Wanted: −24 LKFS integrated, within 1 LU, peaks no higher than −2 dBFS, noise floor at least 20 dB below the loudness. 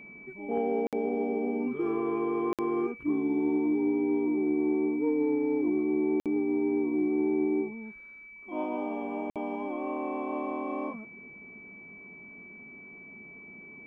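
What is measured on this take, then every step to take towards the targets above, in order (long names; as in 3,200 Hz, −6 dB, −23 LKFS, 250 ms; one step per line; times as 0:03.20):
number of dropouts 4; longest dropout 57 ms; interfering tone 2,300 Hz; level of the tone −46 dBFS; integrated loudness −29.5 LKFS; sample peak −18.0 dBFS; target loudness −24.0 LKFS
→ repair the gap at 0:00.87/0:02.53/0:06.20/0:09.30, 57 ms
notch filter 2,300 Hz, Q 30
level +5.5 dB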